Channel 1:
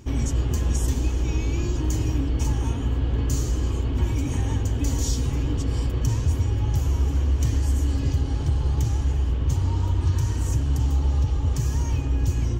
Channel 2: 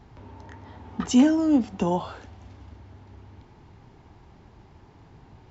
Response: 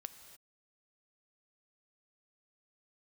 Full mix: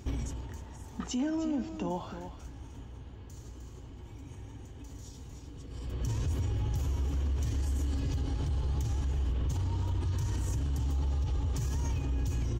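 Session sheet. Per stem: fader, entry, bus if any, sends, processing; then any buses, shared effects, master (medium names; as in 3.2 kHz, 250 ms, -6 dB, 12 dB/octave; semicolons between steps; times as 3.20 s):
-2.0 dB, 0.00 s, send -18 dB, echo send -23 dB, peaking EQ 3.7 kHz +2.5 dB 0.34 oct; peak limiter -20.5 dBFS, peak gain reduction 8.5 dB; auto duck -23 dB, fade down 0.75 s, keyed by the second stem
-8.0 dB, 0.00 s, no send, echo send -12 dB, none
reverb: on, pre-delay 3 ms
echo: delay 305 ms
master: peak limiter -25 dBFS, peak gain reduction 8.5 dB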